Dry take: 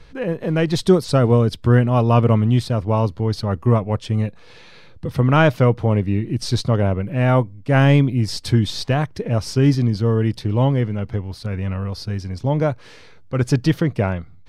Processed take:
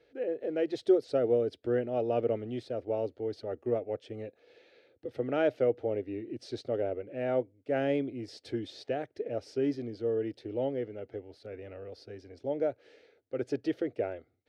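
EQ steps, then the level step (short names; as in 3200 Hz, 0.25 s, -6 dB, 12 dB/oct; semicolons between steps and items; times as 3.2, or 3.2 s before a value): HPF 300 Hz 6 dB/oct; band-pass 470 Hz, Q 0.53; fixed phaser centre 430 Hz, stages 4; -5.5 dB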